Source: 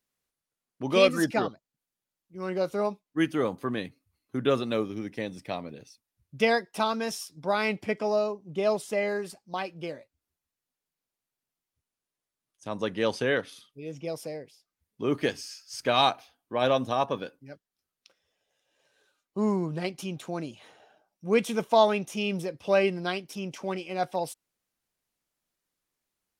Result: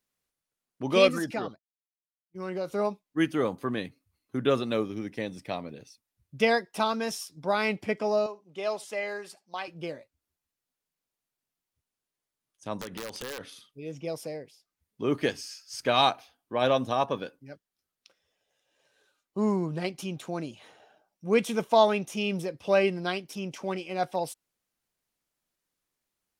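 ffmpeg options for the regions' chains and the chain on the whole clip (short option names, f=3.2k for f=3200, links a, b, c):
-filter_complex "[0:a]asettb=1/sr,asplit=3[a][b][c];[a]atrim=end=1.184[d];[b]atrim=start=1.18:end=2.72,asetpts=PTS-STARTPTS,afade=t=in:d=0.004:c=qsin,afade=t=out:st=1.536:d=0.004:c=qsin,agate=range=-33dB:threshold=-45dB:ratio=3:release=100:detection=peak,acompressor=threshold=-31dB:ratio=2:attack=3.2:release=140:knee=1:detection=peak[e];[c]atrim=start=2.716[f];[d][e]acrossfade=d=0.004:c1=hsin:c2=qsin[g];[g][f]acrossfade=d=0.004:c1=qsin:c2=hsin,asettb=1/sr,asplit=3[h][i][j];[h]atrim=end=8.264[k];[i]atrim=start=8.26:end=9.68,asetpts=PTS-STARTPTS,afade=t=in:d=0.004:c=qsin,afade=t=out:st=1.416:d=0.004:c=qsin,highpass=f=900:p=1,highshelf=f=10k:g=-7.5,aecho=1:1:73:0.0708,atrim=end_sample=62622[l];[j]atrim=start=9.676[m];[k][l]acrossfade=d=0.004:c1=hsin:c2=qsin[n];[n][m]acrossfade=d=0.004:c1=qsin:c2=hsin,asettb=1/sr,asplit=3[o][p][q];[o]atrim=end=12.784[r];[p]atrim=start=12.78:end=13.41,asetpts=PTS-STARTPTS,afade=t=in:d=0.004:c=qsin,afade=t=out:st=0.626:d=0.004:c=qsin,acompressor=threshold=-33dB:ratio=10:attack=3.2:release=140:knee=1:detection=peak,aeval=exprs='(mod(28.2*val(0)+1,2)-1)/28.2':c=same[s];[q]atrim=start=13.406[t];[r][s]acrossfade=d=0.004:c1=hsin:c2=qsin[u];[u][t]acrossfade=d=0.004:c1=qsin:c2=hsin"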